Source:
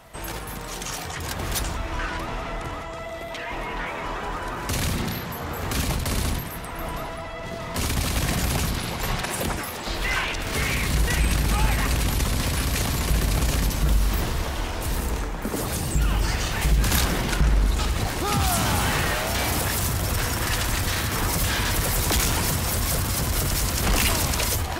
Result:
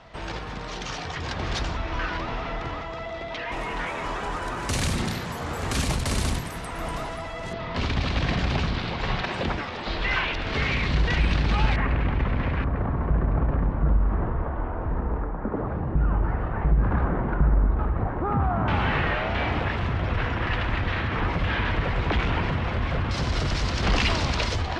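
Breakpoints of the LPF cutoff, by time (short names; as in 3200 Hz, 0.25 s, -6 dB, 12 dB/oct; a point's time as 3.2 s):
LPF 24 dB/oct
5100 Hz
from 3.52 s 10000 Hz
from 7.53 s 4200 Hz
from 11.76 s 2300 Hz
from 12.64 s 1400 Hz
from 18.68 s 2900 Hz
from 23.11 s 4800 Hz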